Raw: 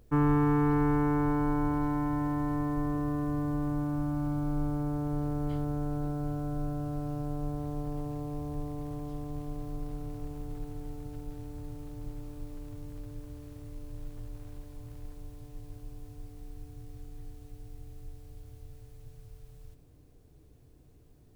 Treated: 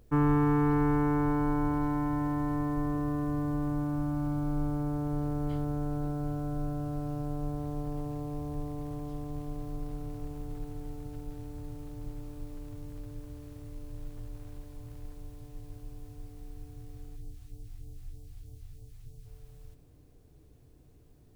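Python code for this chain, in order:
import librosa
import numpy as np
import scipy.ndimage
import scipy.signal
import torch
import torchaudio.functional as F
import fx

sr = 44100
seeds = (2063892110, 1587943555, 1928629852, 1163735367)

y = fx.phaser_stages(x, sr, stages=2, low_hz=380.0, high_hz=1600.0, hz=3.2, feedback_pct=25, at=(17.15, 19.25), fade=0.02)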